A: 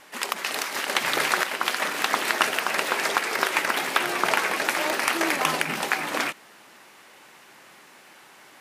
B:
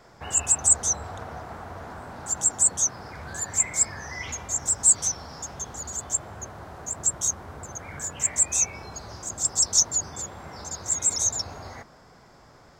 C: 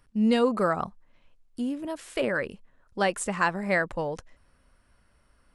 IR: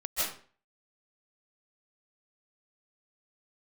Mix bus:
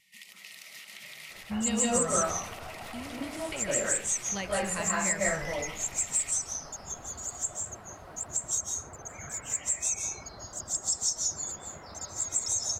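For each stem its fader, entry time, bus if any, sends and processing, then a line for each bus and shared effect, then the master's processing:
−13.5 dB, 0.00 s, bus A, send −22 dB, brickwall limiter −16 dBFS, peak gain reduction 11.5 dB
−7.5 dB, 1.30 s, no bus, send −5 dB, reverb reduction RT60 1.5 s; downward compressor, threshold −23 dBFS, peak gain reduction 10 dB
+1.5 dB, 1.35 s, bus A, send −14 dB, no processing
bus A: 0.0 dB, linear-phase brick-wall band-stop 220–1,800 Hz; downward compressor 2.5 to 1, threshold −44 dBFS, peak gain reduction 14 dB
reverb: on, RT60 0.45 s, pre-delay 115 ms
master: no processing

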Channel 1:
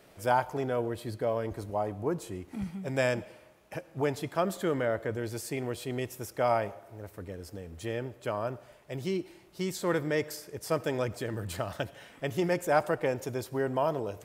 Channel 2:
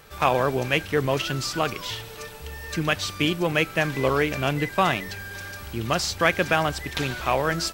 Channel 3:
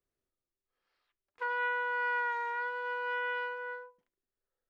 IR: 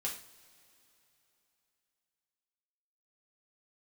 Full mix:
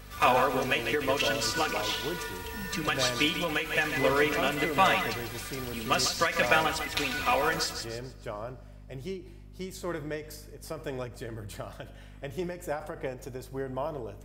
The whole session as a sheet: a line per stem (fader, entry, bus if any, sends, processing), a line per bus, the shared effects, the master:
−6.5 dB, 0.00 s, send −10 dB, no echo send, mains hum 50 Hz, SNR 11 dB
−3.5 dB, 0.00 s, send −12 dB, echo send −8.5 dB, low-shelf EQ 480 Hz −8 dB; notch filter 820 Hz, Q 12; comb filter 4.1 ms, depth 79%
−10.5 dB, 0.00 s, no send, no echo send, no processing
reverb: on, pre-delay 3 ms
echo: repeating echo 145 ms, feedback 38%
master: every ending faded ahead of time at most 120 dB per second

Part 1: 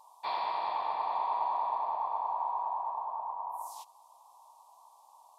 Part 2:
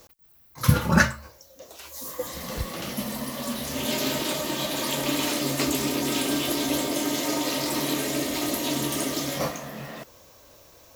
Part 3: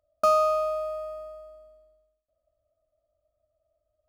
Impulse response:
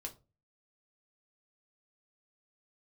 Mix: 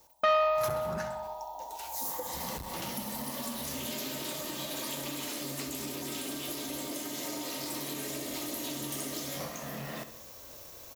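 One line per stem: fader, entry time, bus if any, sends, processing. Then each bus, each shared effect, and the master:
−8.5 dB, 0.00 s, no send, no echo send, Chebyshev band-stop filter 940–2,800 Hz, order 5
−5.5 dB, 0.00 s, no send, echo send −12 dB, speech leveller within 5 dB 2 s; leveller curve on the samples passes 1; downward compressor 10 to 1, threshold −30 dBFS, peak gain reduction 15.5 dB
−2.0 dB, 0.00 s, no send, no echo send, low-pass filter 4,100 Hz 24 dB per octave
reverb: not used
echo: repeating echo 64 ms, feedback 52%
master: high-shelf EQ 6,700 Hz +6.5 dB; saturating transformer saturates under 1,200 Hz

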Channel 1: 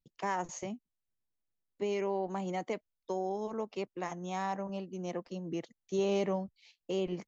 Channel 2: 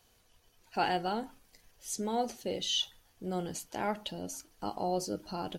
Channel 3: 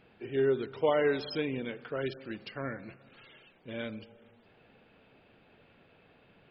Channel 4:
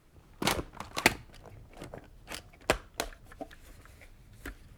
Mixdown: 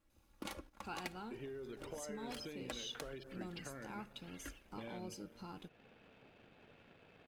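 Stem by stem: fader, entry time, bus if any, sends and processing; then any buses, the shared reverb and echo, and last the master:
muted
−11.5 dB, 0.10 s, no send, comb filter 0.8 ms, depth 69%
−1.5 dB, 1.10 s, no send, brickwall limiter −26.5 dBFS, peak gain reduction 10 dB; downward compressor, threshold −41 dBFS, peak gain reduction 10.5 dB
−7.0 dB, 0.00 s, no send, comb filter 3.6 ms, depth 69%; downward compressor 2.5 to 1, threshold −35 dBFS, peak gain reduction 13.5 dB; noise gate −45 dBFS, range −7 dB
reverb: not used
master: leveller curve on the samples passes 1; downward compressor 1.5 to 1, threshold −56 dBFS, peak gain reduction 9.5 dB

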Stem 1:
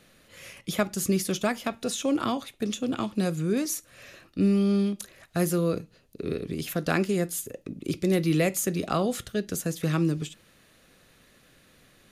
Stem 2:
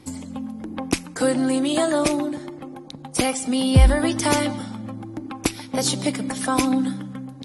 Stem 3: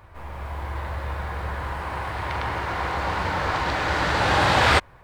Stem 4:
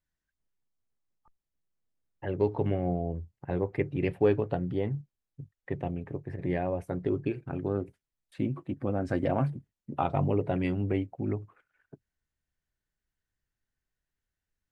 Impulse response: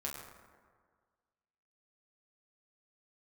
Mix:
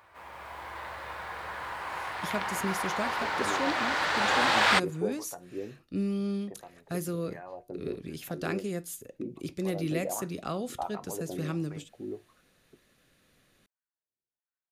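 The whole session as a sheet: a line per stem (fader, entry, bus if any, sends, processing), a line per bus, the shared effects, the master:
−8.0 dB, 1.55 s, no send, no processing
muted
−2.5 dB, 0.00 s, no send, high-pass filter 870 Hz 6 dB per octave
+1.0 dB, 0.80 s, no send, LFO wah 1.4 Hz 340–1,300 Hz, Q 2.1; tuned comb filter 120 Hz, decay 0.29 s, harmonics all, mix 50%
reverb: not used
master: no processing

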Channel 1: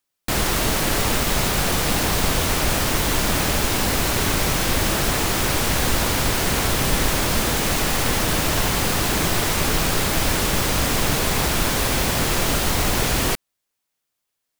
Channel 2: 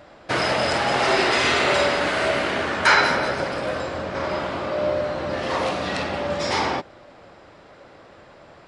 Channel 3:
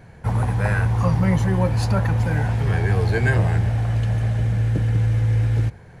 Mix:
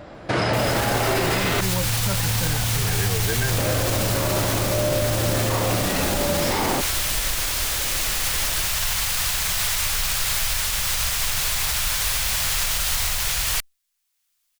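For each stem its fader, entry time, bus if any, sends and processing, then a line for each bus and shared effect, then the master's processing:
−3.5 dB, 0.25 s, no send, automatic gain control gain up to 12.5 dB; guitar amp tone stack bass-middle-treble 10-0-10
+3.0 dB, 0.00 s, muted 0:01.61–0:03.58, no send, low-shelf EQ 420 Hz +9 dB
−1.0 dB, 0.15 s, no send, high-pass filter 84 Hz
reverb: not used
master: brickwall limiter −12.5 dBFS, peak gain reduction 12.5 dB

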